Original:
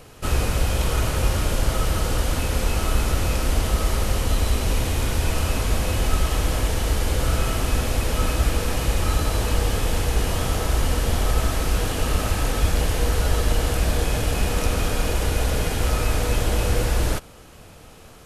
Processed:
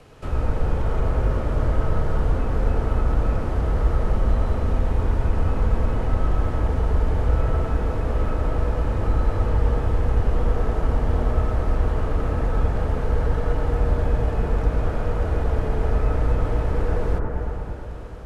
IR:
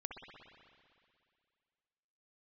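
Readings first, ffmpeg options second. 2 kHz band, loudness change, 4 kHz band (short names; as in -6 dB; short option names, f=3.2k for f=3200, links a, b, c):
-7.5 dB, -0.5 dB, -17.5 dB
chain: -filter_complex "[0:a]aemphasis=mode=reproduction:type=50fm,acrossover=split=140|1500[a][b][c];[b]asoftclip=type=hard:threshold=-27.5dB[d];[c]acompressor=threshold=-49dB:ratio=5[e];[a][d][e]amix=inputs=3:normalize=0[f];[1:a]atrim=start_sample=2205,asetrate=24696,aresample=44100[g];[f][g]afir=irnorm=-1:irlink=0,volume=-1.5dB"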